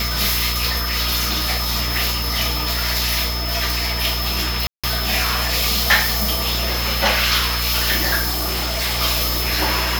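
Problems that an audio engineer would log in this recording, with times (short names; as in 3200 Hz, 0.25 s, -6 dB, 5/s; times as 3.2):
hum 60 Hz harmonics 7 -25 dBFS
tone 5200 Hz -26 dBFS
4.67–4.84 gap 0.166 s
8.3–9 clipped -18 dBFS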